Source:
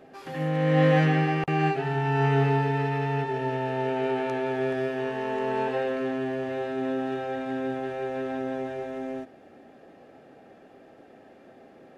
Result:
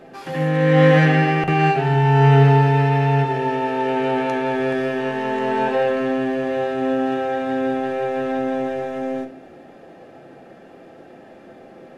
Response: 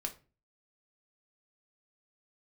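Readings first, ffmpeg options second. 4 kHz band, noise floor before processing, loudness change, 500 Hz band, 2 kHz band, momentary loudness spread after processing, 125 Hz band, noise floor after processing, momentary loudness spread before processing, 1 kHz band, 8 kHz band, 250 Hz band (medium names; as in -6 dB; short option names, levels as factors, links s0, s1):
+8.0 dB, -53 dBFS, +8.0 dB, +7.5 dB, +8.0 dB, 11 LU, +9.5 dB, -44 dBFS, 10 LU, +8.5 dB, no reading, +7.5 dB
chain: -filter_complex "[0:a]asplit=2[s0][s1];[1:a]atrim=start_sample=2205,asetrate=24255,aresample=44100[s2];[s1][s2]afir=irnorm=-1:irlink=0,volume=1.12[s3];[s0][s3]amix=inputs=2:normalize=0"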